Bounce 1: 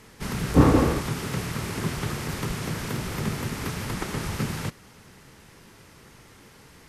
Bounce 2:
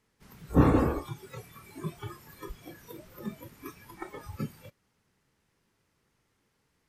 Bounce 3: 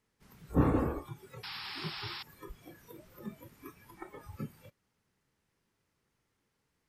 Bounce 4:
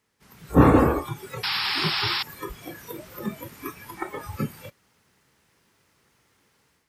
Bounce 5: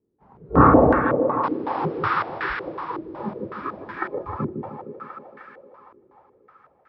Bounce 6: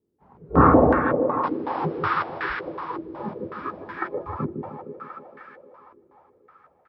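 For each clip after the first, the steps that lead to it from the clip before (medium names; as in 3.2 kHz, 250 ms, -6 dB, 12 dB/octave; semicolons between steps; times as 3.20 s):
spectral noise reduction 19 dB; trim -4.5 dB
dynamic bell 5.1 kHz, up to -7 dB, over -59 dBFS, Q 0.84; painted sound noise, 1.43–2.23 s, 750–5500 Hz -37 dBFS; trim -5.5 dB
high-pass 46 Hz; bass shelf 460 Hz -5.5 dB; level rider gain up to 9 dB; trim +7.5 dB
thinning echo 154 ms, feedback 84%, high-pass 170 Hz, level -6 dB; step-sequenced low-pass 5.4 Hz 360–1600 Hz; trim -1 dB
doubling 12 ms -11 dB; trim -1.5 dB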